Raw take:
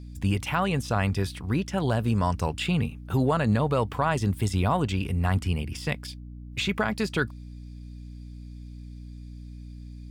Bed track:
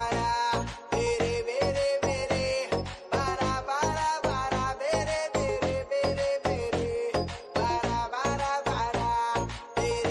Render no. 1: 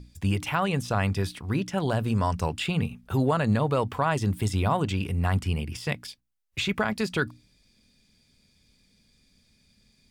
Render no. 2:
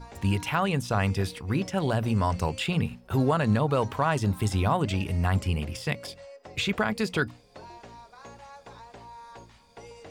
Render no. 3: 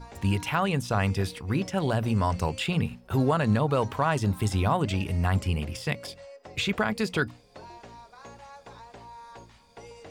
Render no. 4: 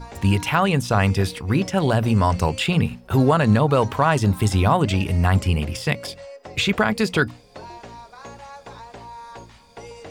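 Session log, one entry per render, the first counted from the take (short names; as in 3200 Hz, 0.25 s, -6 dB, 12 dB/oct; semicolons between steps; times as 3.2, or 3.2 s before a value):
notches 60/120/180/240/300 Hz
add bed track -18.5 dB
nothing audible
gain +7 dB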